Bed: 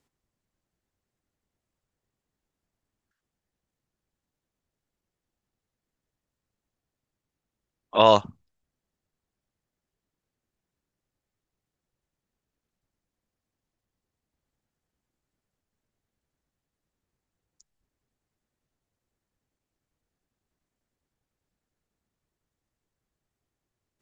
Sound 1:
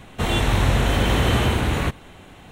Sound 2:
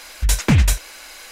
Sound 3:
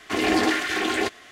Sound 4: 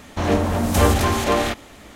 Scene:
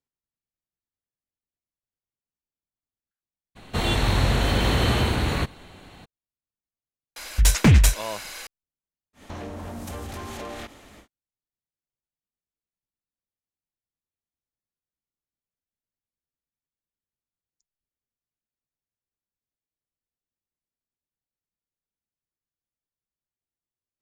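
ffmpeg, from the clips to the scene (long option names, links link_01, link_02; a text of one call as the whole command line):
ffmpeg -i bed.wav -i cue0.wav -i cue1.wav -i cue2.wav -i cue3.wav -filter_complex "[0:a]volume=-16.5dB[link_01];[1:a]equalizer=frequency=4300:width=6.5:gain=11[link_02];[2:a]acontrast=61[link_03];[4:a]acompressor=threshold=-27dB:ratio=6:attack=3.2:release=140:knee=1:detection=peak[link_04];[link_02]atrim=end=2.51,asetpts=PTS-STARTPTS,volume=-2.5dB,afade=type=in:duration=0.02,afade=type=out:start_time=2.49:duration=0.02,adelay=3550[link_05];[link_03]atrim=end=1.31,asetpts=PTS-STARTPTS,volume=-5dB,afade=type=in:duration=0.004:curve=hsin,afade=type=out:start_time=1.306:duration=0.004:curve=hsin,adelay=7160[link_06];[link_04]atrim=end=1.95,asetpts=PTS-STARTPTS,volume=-5.5dB,afade=type=in:duration=0.1,afade=type=out:start_time=1.85:duration=0.1,adelay=9130[link_07];[link_01][link_05][link_06][link_07]amix=inputs=4:normalize=0" out.wav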